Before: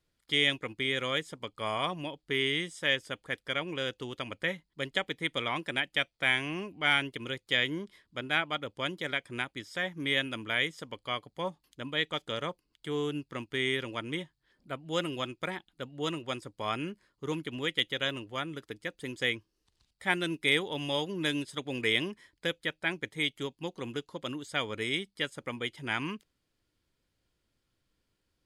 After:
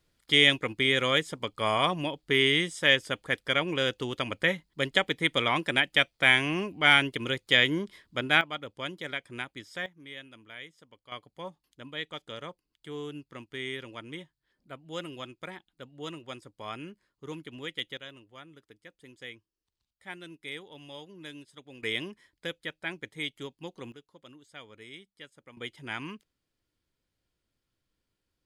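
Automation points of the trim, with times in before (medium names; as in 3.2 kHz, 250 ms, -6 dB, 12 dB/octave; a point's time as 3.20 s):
+6 dB
from 8.41 s -2.5 dB
from 9.86 s -15 dB
from 11.12 s -6 dB
from 17.97 s -13.5 dB
from 21.83 s -4 dB
from 23.92 s -15 dB
from 25.57 s -4 dB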